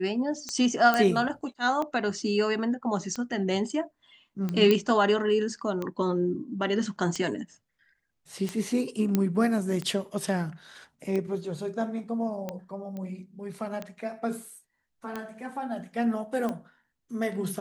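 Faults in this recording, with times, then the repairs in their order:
tick 45 rpm -19 dBFS
0.94 pop -11 dBFS
4.71 pop -10 dBFS
9.15 pop -11 dBFS
12.97 pop -26 dBFS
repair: de-click

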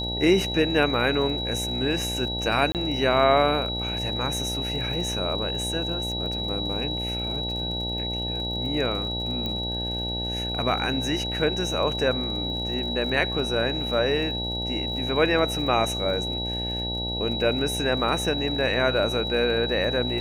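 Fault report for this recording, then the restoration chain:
buzz 60 Hz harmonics 15 -32 dBFS
crackle 49/s -35 dBFS
tone 3900 Hz -29 dBFS
2.72–2.75 gap 28 ms
9.46 pop -17 dBFS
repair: de-click; de-hum 60 Hz, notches 15; notch 3900 Hz, Q 30; interpolate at 2.72, 28 ms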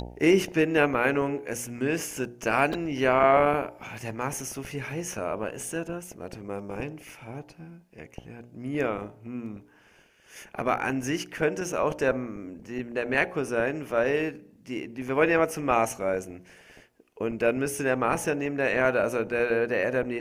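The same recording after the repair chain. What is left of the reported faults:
9.46 pop

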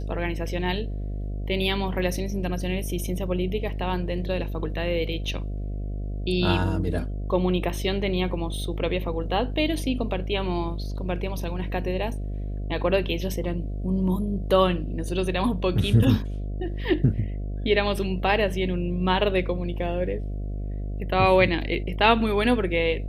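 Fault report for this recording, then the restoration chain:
buzz 50 Hz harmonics 14 -30 dBFS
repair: de-hum 50 Hz, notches 14

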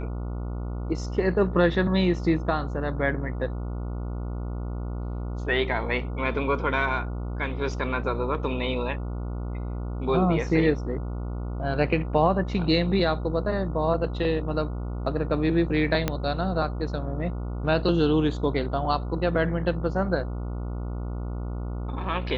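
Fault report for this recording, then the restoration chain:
buzz 60 Hz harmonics 24 -31 dBFS
16.08 pop -9 dBFS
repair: de-click; de-hum 60 Hz, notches 24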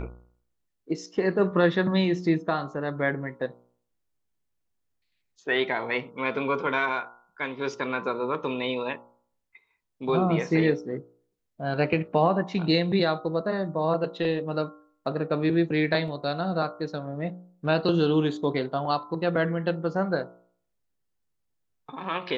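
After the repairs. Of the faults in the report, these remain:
16.08 pop

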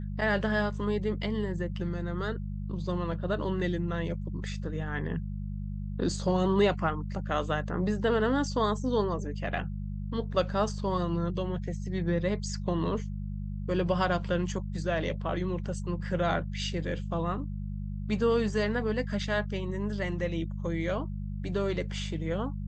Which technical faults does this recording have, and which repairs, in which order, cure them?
hum 50 Hz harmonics 4 -35 dBFS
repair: de-hum 50 Hz, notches 4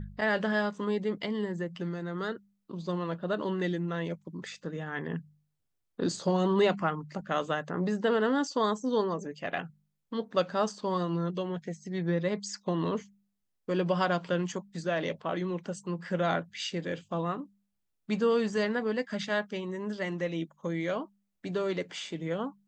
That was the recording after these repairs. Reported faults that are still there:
none

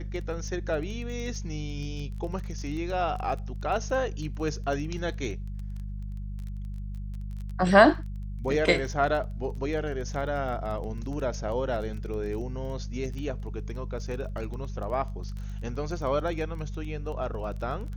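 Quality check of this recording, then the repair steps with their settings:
crackle 20/s -35 dBFS
hum 50 Hz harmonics 4 -35 dBFS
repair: de-click; de-hum 50 Hz, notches 4

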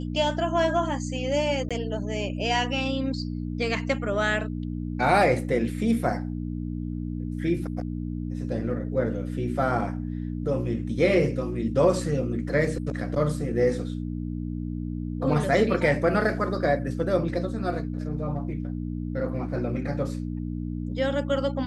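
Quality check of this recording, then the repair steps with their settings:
hum 60 Hz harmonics 5 -31 dBFS
1.69–1.71 gap 16 ms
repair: de-hum 60 Hz, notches 5; interpolate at 1.69, 16 ms

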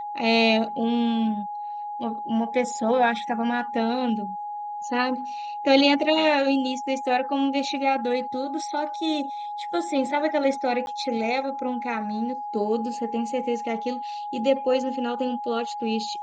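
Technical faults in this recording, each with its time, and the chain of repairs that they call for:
tone 830 Hz -30 dBFS
10.86–10.87 gap 11 ms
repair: notch 830 Hz, Q 30; interpolate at 10.86, 11 ms

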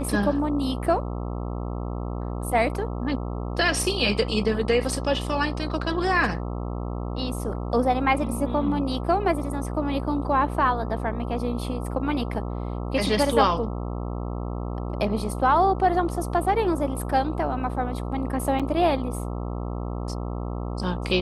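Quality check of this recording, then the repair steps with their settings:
buzz 60 Hz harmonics 22 -30 dBFS
18.59–18.6 gap 6.2 ms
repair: de-hum 60 Hz, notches 22; interpolate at 18.59, 6.2 ms

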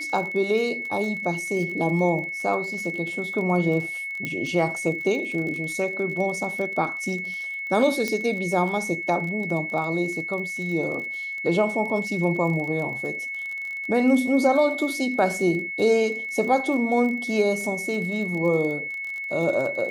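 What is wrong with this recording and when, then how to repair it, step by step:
crackle 30/s -31 dBFS
tone 2200 Hz -29 dBFS
4.25 pop -15 dBFS
8.08 pop -13 dBFS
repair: de-click; notch 2200 Hz, Q 30

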